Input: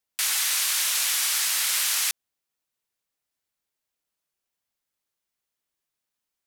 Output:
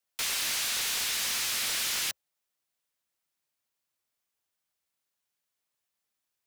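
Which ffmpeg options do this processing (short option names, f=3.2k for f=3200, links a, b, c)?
-filter_complex "[0:a]acrossover=split=190|5700[a][b][c];[c]alimiter=level_in=1dB:limit=-24dB:level=0:latency=1,volume=-1dB[d];[a][b][d]amix=inputs=3:normalize=0,volume=27.5dB,asoftclip=hard,volume=-27.5dB,afreqshift=290,aeval=exprs='val(0)*sgn(sin(2*PI*230*n/s))':c=same"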